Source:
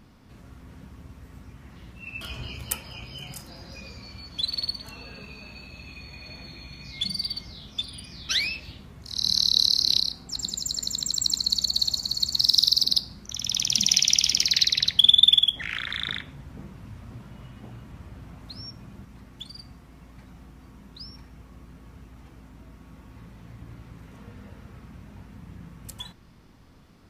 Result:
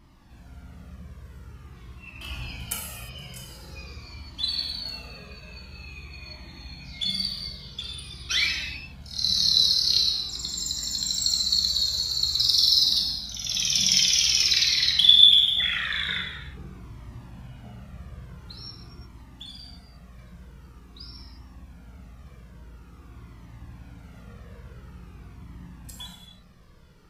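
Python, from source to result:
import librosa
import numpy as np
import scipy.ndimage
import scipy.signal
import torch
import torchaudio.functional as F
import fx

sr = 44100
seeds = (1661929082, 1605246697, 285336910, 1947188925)

y = fx.dynamic_eq(x, sr, hz=1900.0, q=0.85, threshold_db=-38.0, ratio=4.0, max_db=5)
y = fx.rev_gated(y, sr, seeds[0], gate_ms=380, shape='falling', drr_db=-1.5)
y = fx.comb_cascade(y, sr, direction='falling', hz=0.47)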